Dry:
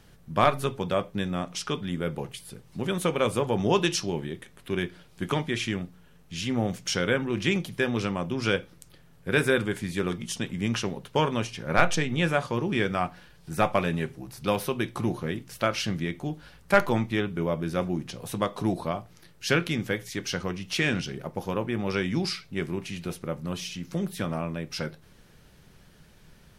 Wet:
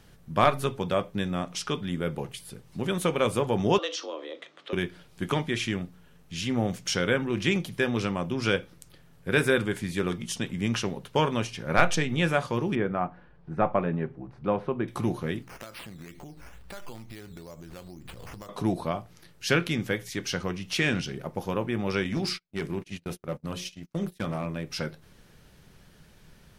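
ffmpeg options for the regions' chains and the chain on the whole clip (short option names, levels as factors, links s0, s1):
-filter_complex "[0:a]asettb=1/sr,asplit=3[s0][s1][s2];[s0]atrim=end=3.784[s3];[s1]atrim=start=3.78:end=4.73,asetpts=PTS-STARTPTS,afade=t=in:d=0.004:c=qsin,afade=t=out:st=0.946:d=0.004:c=qsin,acompressor=threshold=0.02:ratio=2:attack=3.2:release=140:knee=1:detection=peak,afreqshift=150,highpass=420,equalizer=f=480:t=q:w=4:g=3,equalizer=f=1200:t=q:w=4:g=8,equalizer=f=3300:t=q:w=4:g=6,lowpass=f=6200:w=0.5412,lowpass=f=6200:w=1.3066[s4];[s2]atrim=start=4.726[s5];[s3][s4]acrossfade=d=0.004:c1=hsin:c2=qsin[s6];[s6][s5]acrossfade=d=0.004:c1=qsin:c2=hsin,asettb=1/sr,asplit=3[s7][s8][s9];[s7]atrim=end=12.754[s10];[s8]atrim=start=12.75:end=14.88,asetpts=PTS-STARTPTS,afade=t=in:d=0.004:c=qsin,afade=t=out:st=2.126:d=0.004:c=qsin,lowpass=1300,equalizer=f=89:t=o:w=0.43:g=-7[s11];[s9]atrim=start=14.876[s12];[s10][s11]acrossfade=d=0.004:c1=hsin:c2=qsin[s13];[s13][s12]acrossfade=d=0.004:c1=qsin:c2=hsin,asettb=1/sr,asplit=3[s14][s15][s16];[s14]atrim=end=15.424[s17];[s15]atrim=start=15.42:end=18.49,asetpts=PTS-STARTPTS,afade=t=in:d=0.004:c=qsin,afade=t=out:st=3.066:d=0.004:c=qsin,acrusher=samples=9:mix=1:aa=0.000001:lfo=1:lforange=5.4:lforate=2.2,acompressor=threshold=0.0112:ratio=8:attack=3.2:release=140:knee=1:detection=peak,asubboost=boost=6.5:cutoff=74[s18];[s16]atrim=start=18.486[s19];[s17][s18]acrossfade=d=0.004:c1=hsin:c2=qsin[s20];[s20][s19]acrossfade=d=0.004:c1=qsin:c2=hsin,asettb=1/sr,asplit=3[s21][s22][s23];[s21]atrim=end=22.044[s24];[s22]atrim=start=22.04:end=24.66,asetpts=PTS-STARTPTS,afade=t=in:d=0.004:c=qsin,afade=t=out:st=2.616:d=0.004:c=qsin,bandreject=f=60:t=h:w=6,bandreject=f=120:t=h:w=6,bandreject=f=180:t=h:w=6,bandreject=f=240:t=h:w=6,bandreject=f=300:t=h:w=6,bandreject=f=360:t=h:w=6,bandreject=f=420:t=h:w=6,bandreject=f=480:t=h:w=6,bandreject=f=540:t=h:w=6,bandreject=f=600:t=h:w=6,agate=range=0.0141:threshold=0.0141:ratio=16:release=100:detection=peak,asoftclip=type=hard:threshold=0.0708[s25];[s23]atrim=start=24.656[s26];[s24][s25]acrossfade=d=0.004:c1=hsin:c2=qsin[s27];[s27][s26]acrossfade=d=0.004:c1=qsin:c2=hsin"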